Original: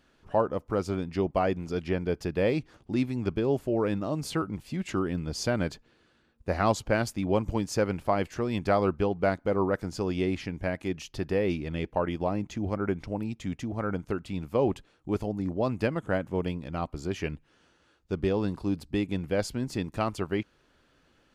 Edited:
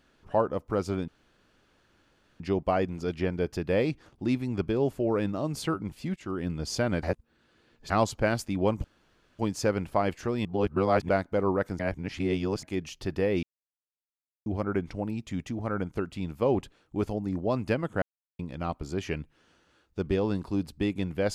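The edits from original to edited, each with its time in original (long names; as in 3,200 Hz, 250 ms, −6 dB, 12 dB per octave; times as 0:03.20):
0:01.08: splice in room tone 1.32 s
0:04.84–0:05.16: fade in linear, from −17.5 dB
0:05.71–0:06.58: reverse
0:07.52: splice in room tone 0.55 s
0:08.58–0:09.22: reverse
0:09.92–0:10.76: reverse
0:11.56–0:12.59: silence
0:16.15–0:16.52: silence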